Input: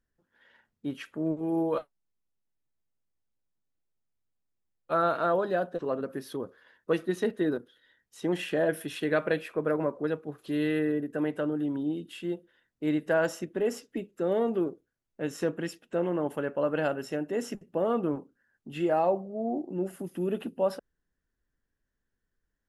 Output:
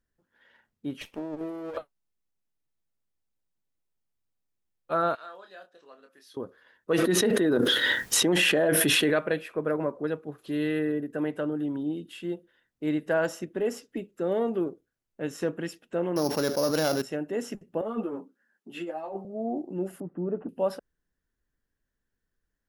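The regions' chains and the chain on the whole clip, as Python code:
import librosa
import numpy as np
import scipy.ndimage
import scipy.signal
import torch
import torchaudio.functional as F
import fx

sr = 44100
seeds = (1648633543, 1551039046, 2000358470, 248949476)

y = fx.chain(x, sr, fx.lower_of_two(delay_ms=0.34),
    fx.low_shelf(hz=210.0, db=-8.5),
    fx.over_compress(threshold_db=-35.0, ratio=-1.0), at=(1.01, 1.77))
y = fx.chain(y, sr, fx.lowpass(hz=5500.0, slope=12),
    fx.differentiator(),
    fx.doubler(ms=26.0, db=-7), at=(5.15, 6.37))
y = fx.chain(y, sr, fx.low_shelf(hz=76.0, db=-12.0),
    fx.env_flatten(amount_pct=100), at=(6.91, 9.19))
y = fx.chain(y, sr, fx.sample_sort(block=8),
    fx.env_flatten(amount_pct=70), at=(16.16, 17.02))
y = fx.chain(y, sr, fx.highpass(hz=190.0, slope=24),
    fx.over_compress(threshold_db=-30.0, ratio=-1.0),
    fx.ensemble(), at=(17.81, 19.25))
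y = fx.chain(y, sr, fx.lowpass(hz=1300.0, slope=24),
    fx.comb(ms=6.7, depth=0.31), at=(20.0, 20.49))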